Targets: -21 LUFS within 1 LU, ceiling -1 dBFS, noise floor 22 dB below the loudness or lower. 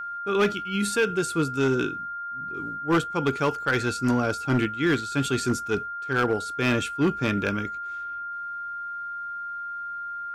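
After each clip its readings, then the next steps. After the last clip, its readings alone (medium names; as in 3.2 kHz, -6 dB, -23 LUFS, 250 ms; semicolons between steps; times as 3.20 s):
clipped samples 0.9%; clipping level -16.0 dBFS; steady tone 1.4 kHz; tone level -31 dBFS; loudness -26.5 LUFS; peak level -16.0 dBFS; loudness target -21.0 LUFS
-> clip repair -16 dBFS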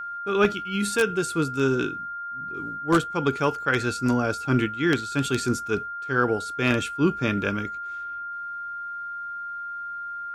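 clipped samples 0.0%; steady tone 1.4 kHz; tone level -31 dBFS
-> band-stop 1.4 kHz, Q 30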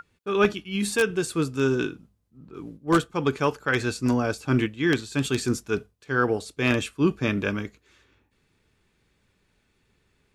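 steady tone not found; loudness -25.5 LUFS; peak level -6.5 dBFS; loudness target -21.0 LUFS
-> trim +4.5 dB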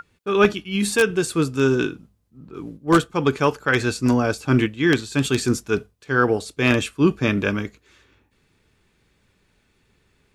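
loudness -21.0 LUFS; peak level -2.0 dBFS; noise floor -65 dBFS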